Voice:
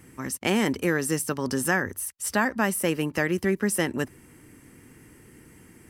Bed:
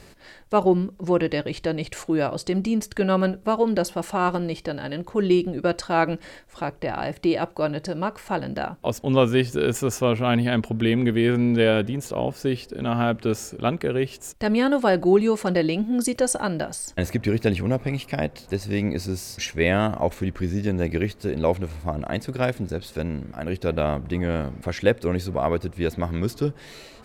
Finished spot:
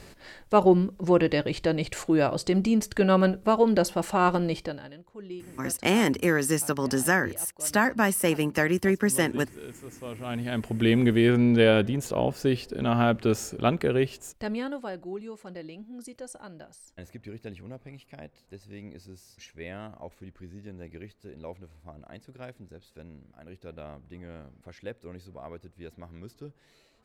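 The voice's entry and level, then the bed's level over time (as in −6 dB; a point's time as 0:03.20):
5.40 s, +1.0 dB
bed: 0:04.59 0 dB
0:05.03 −20.5 dB
0:09.94 −20.5 dB
0:10.89 −0.5 dB
0:14.01 −0.5 dB
0:15.04 −19.5 dB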